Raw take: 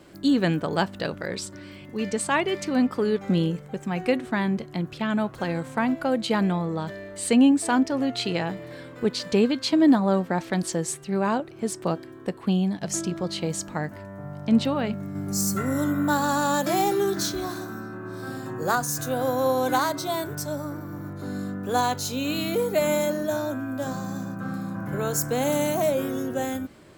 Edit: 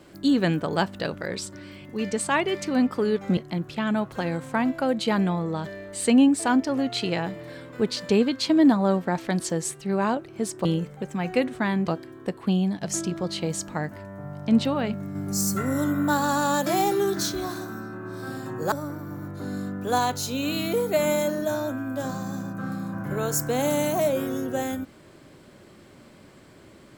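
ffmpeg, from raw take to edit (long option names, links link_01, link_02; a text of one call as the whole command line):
ffmpeg -i in.wav -filter_complex "[0:a]asplit=5[link_01][link_02][link_03][link_04][link_05];[link_01]atrim=end=3.372[link_06];[link_02]atrim=start=4.598:end=11.882[link_07];[link_03]atrim=start=3.368:end=4.602[link_08];[link_04]atrim=start=11.878:end=18.722[link_09];[link_05]atrim=start=20.538[link_10];[link_06][link_07]acrossfade=duration=0.004:curve1=hsin:curve2=hsin[link_11];[link_11][link_08]acrossfade=duration=0.004:curve1=hsin:curve2=hsin[link_12];[link_12][link_09]acrossfade=duration=0.004:curve1=hsin:curve2=hsin[link_13];[link_13][link_10]acrossfade=duration=0.004:curve1=hsin:curve2=hsin" out.wav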